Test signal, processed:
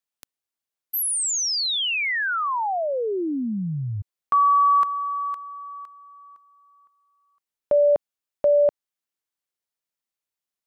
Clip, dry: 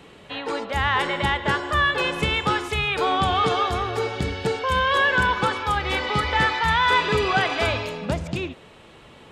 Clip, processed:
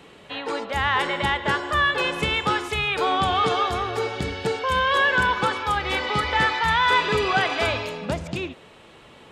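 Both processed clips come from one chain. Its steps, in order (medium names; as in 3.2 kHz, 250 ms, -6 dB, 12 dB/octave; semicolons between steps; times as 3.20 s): bass shelf 160 Hz -5 dB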